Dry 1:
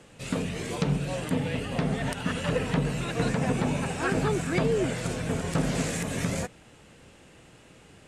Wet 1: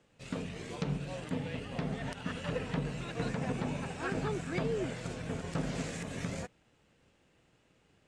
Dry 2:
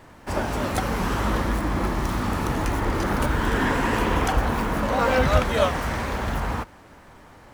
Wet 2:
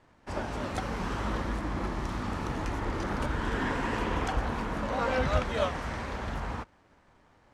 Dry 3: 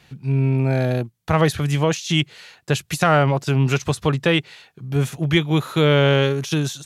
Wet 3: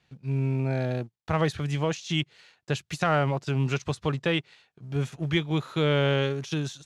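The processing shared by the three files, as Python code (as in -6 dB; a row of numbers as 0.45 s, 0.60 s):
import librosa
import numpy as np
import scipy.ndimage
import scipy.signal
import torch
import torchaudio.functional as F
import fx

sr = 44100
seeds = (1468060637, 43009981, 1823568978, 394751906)

y = fx.law_mismatch(x, sr, coded='A')
y = scipy.signal.sosfilt(scipy.signal.butter(2, 7200.0, 'lowpass', fs=sr, output='sos'), y)
y = y * 10.0 ** (-7.5 / 20.0)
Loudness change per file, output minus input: -8.5 LU, -8.0 LU, -8.0 LU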